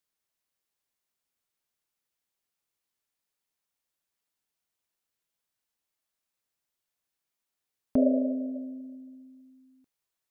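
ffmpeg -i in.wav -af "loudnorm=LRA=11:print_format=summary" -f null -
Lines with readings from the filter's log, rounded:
Input Integrated:    -28.7 LUFS
Input True Peak:     -12.3 dBTP
Input LRA:             1.3 LU
Input Threshold:     -41.6 LUFS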